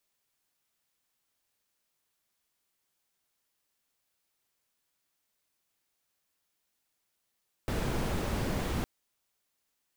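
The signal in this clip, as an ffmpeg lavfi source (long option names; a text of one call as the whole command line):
ffmpeg -f lavfi -i "anoisesrc=color=brown:amplitude=0.132:duration=1.16:sample_rate=44100:seed=1" out.wav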